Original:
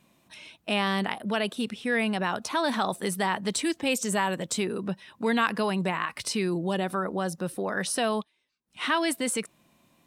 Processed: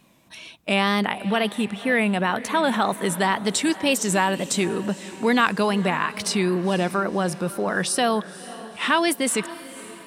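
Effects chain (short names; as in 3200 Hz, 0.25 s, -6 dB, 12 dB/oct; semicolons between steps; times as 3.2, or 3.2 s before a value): 1.05–3.18 bell 5000 Hz -11.5 dB 0.42 oct; wow and flutter 90 cents; diffused feedback echo 0.51 s, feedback 47%, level -16 dB; gain +5.5 dB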